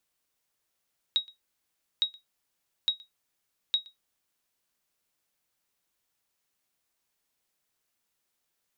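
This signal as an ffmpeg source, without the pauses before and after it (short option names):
-f lavfi -i "aevalsrc='0.15*(sin(2*PI*3800*mod(t,0.86))*exp(-6.91*mod(t,0.86)/0.15)+0.0562*sin(2*PI*3800*max(mod(t,0.86)-0.12,0))*exp(-6.91*max(mod(t,0.86)-0.12,0)/0.15))':d=3.44:s=44100"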